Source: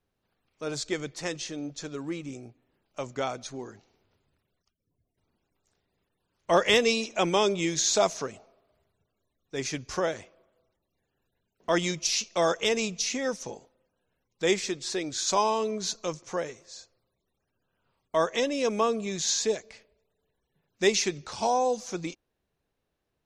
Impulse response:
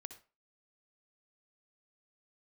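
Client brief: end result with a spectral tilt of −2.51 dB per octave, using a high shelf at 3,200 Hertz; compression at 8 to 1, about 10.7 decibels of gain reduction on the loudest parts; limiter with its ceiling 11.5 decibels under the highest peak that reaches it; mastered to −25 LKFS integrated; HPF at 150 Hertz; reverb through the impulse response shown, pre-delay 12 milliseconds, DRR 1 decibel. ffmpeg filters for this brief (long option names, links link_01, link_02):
-filter_complex "[0:a]highpass=150,highshelf=frequency=3200:gain=5,acompressor=threshold=-27dB:ratio=8,alimiter=level_in=3dB:limit=-24dB:level=0:latency=1,volume=-3dB,asplit=2[link_01][link_02];[1:a]atrim=start_sample=2205,adelay=12[link_03];[link_02][link_03]afir=irnorm=-1:irlink=0,volume=4dB[link_04];[link_01][link_04]amix=inputs=2:normalize=0,volume=9.5dB"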